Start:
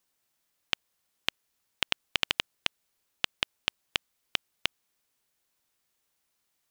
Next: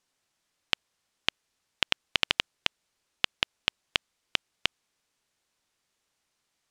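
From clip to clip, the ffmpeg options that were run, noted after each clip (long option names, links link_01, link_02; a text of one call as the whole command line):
ffmpeg -i in.wav -af "lowpass=8000,volume=2.5dB" out.wav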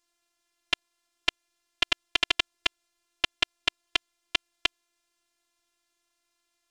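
ffmpeg -i in.wav -af "afftfilt=real='hypot(re,im)*cos(PI*b)':imag='0':win_size=512:overlap=0.75,volume=4.5dB" out.wav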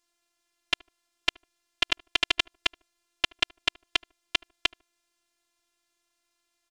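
ffmpeg -i in.wav -filter_complex "[0:a]asplit=2[link_01][link_02];[link_02]adelay=75,lowpass=frequency=930:poles=1,volume=-21.5dB,asplit=2[link_03][link_04];[link_04]adelay=75,lowpass=frequency=930:poles=1,volume=0.32[link_05];[link_01][link_03][link_05]amix=inputs=3:normalize=0" out.wav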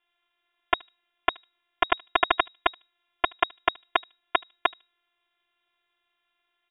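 ffmpeg -i in.wav -af "lowpass=frequency=3200:width_type=q:width=0.5098,lowpass=frequency=3200:width_type=q:width=0.6013,lowpass=frequency=3200:width_type=q:width=0.9,lowpass=frequency=3200:width_type=q:width=2.563,afreqshift=-3800,volume=4.5dB" out.wav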